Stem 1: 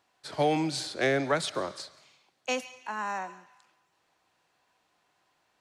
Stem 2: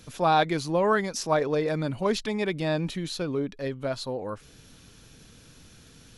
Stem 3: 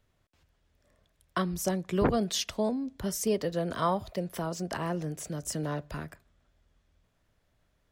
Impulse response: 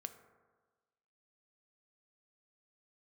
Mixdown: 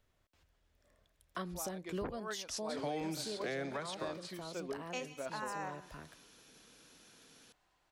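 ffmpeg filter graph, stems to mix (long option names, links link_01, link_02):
-filter_complex "[0:a]adelay=2450,volume=-4.5dB[link_01];[1:a]highpass=290,adelay=1350,volume=-6dB[link_02];[2:a]equalizer=frequency=140:width_type=o:width=1.7:gain=-4.5,volume=-2.5dB,afade=type=out:start_time=1.88:duration=0.39:silence=0.375837,asplit=2[link_03][link_04];[link_04]apad=whole_len=331760[link_05];[link_02][link_05]sidechaincompress=threshold=-53dB:ratio=8:attack=36:release=108[link_06];[link_01][link_06][link_03]amix=inputs=3:normalize=0,alimiter=level_in=5dB:limit=-24dB:level=0:latency=1:release=493,volume=-5dB"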